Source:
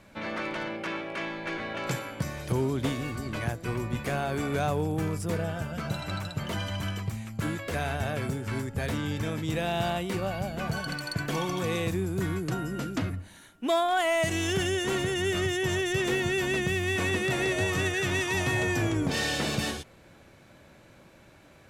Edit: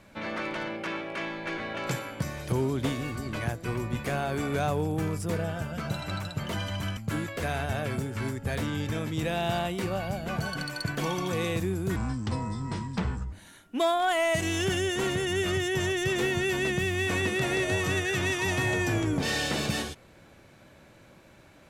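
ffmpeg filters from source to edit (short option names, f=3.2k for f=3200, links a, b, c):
-filter_complex "[0:a]asplit=4[a][b][c][d];[a]atrim=end=6.972[e];[b]atrim=start=7.278:end=12.274[f];[c]atrim=start=12.27:end=13.21,asetpts=PTS-STARTPTS,asetrate=30429,aresample=44100,atrim=end_sample=60078,asetpts=PTS-STARTPTS[g];[d]atrim=start=13.206[h];[e][f]acrossfade=d=0.004:c1=hsin:c2=hsin[i];[i][g]acrossfade=d=0.004:c1=hsin:c2=hsin[j];[j][h]acrossfade=d=0.004:c1=hsin:c2=hsin"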